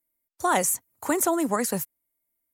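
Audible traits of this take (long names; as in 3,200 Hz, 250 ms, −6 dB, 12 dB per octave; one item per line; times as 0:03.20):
background noise floor −80 dBFS
spectral slope −3.0 dB per octave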